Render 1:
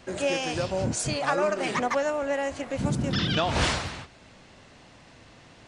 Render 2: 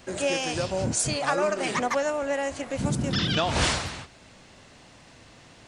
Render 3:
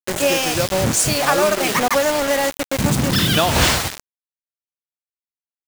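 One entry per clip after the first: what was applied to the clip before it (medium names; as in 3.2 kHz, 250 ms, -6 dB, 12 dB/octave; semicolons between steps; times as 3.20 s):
treble shelf 7.2 kHz +9 dB
bit crusher 5-bit; trim +8 dB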